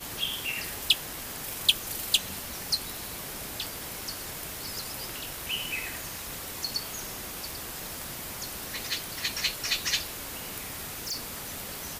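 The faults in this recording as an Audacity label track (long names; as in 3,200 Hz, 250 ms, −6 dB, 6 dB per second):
11.050000	11.500000	clipping −29.5 dBFS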